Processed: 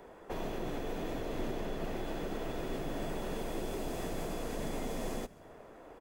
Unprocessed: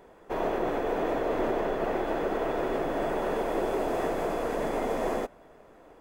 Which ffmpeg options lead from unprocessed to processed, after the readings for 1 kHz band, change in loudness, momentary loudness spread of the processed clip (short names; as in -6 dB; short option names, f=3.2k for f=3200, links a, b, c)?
-12.5 dB, -9.5 dB, 5 LU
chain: -filter_complex "[0:a]acrossover=split=220|3000[a][b][c];[b]acompressor=threshold=-42dB:ratio=6[d];[a][d][c]amix=inputs=3:normalize=0,asplit=2[e][f];[f]asplit=4[g][h][i][j];[g]adelay=134,afreqshift=-54,volume=-23dB[k];[h]adelay=268,afreqshift=-108,volume=-27.6dB[l];[i]adelay=402,afreqshift=-162,volume=-32.2dB[m];[j]adelay=536,afreqshift=-216,volume=-36.7dB[n];[k][l][m][n]amix=inputs=4:normalize=0[o];[e][o]amix=inputs=2:normalize=0,volume=1dB"